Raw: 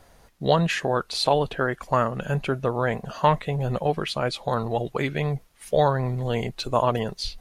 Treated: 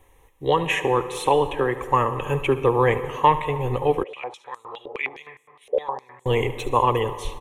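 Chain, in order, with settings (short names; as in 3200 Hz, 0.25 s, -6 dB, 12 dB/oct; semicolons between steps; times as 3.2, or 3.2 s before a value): dynamic EQ 4400 Hz, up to -7 dB, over -47 dBFS, Q 3.7; AGC; fixed phaser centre 970 Hz, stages 8; echo 73 ms -15.5 dB; plate-style reverb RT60 2 s, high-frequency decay 0.5×, pre-delay 0.1 s, DRR 13.5 dB; 4.03–6.26 stepped band-pass 9.7 Hz 550–7700 Hz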